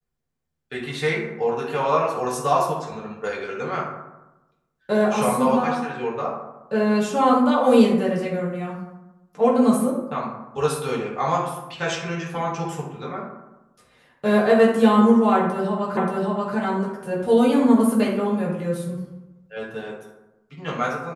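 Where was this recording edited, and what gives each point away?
0:15.97: the same again, the last 0.58 s

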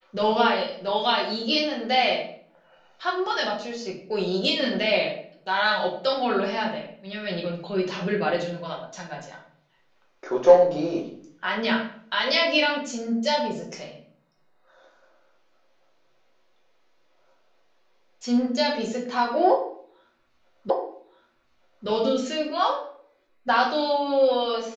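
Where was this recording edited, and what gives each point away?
0:20.70: the same again, the last 1.17 s

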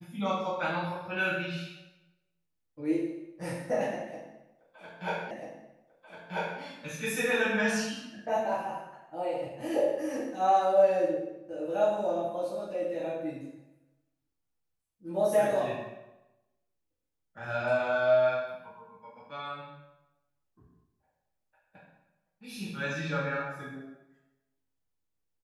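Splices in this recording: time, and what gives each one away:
0:05.31: the same again, the last 1.29 s

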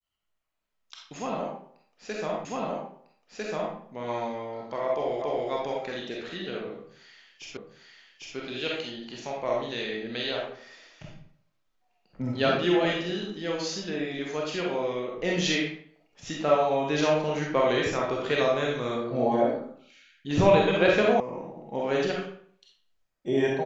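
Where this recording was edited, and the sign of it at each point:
0:02.45: the same again, the last 1.3 s
0:05.22: the same again, the last 0.28 s
0:07.57: the same again, the last 0.8 s
0:21.20: cut off before it has died away

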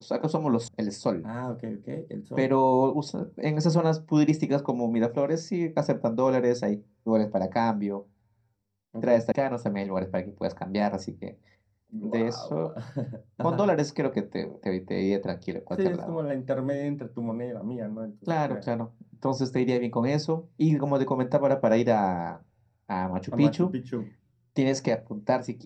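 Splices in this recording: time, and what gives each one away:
0:00.68: cut off before it has died away
0:09.32: cut off before it has died away

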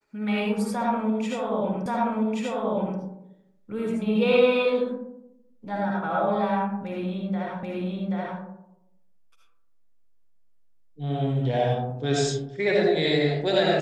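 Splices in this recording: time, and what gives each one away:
0:01.86: the same again, the last 1.13 s
0:07.63: the same again, the last 0.78 s

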